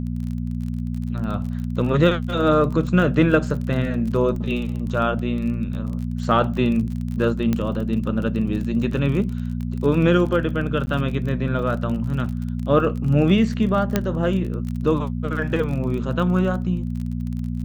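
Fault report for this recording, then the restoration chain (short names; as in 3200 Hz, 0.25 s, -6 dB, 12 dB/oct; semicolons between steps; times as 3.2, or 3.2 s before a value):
crackle 34/s -29 dBFS
hum 60 Hz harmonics 4 -26 dBFS
7.53 pop -10 dBFS
10.86–10.87 gap 10 ms
13.96 pop -5 dBFS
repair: de-click; de-hum 60 Hz, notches 4; interpolate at 10.86, 10 ms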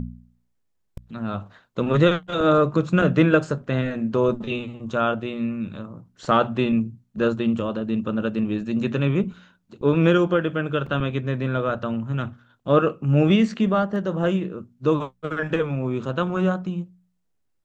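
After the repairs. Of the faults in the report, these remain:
13.96 pop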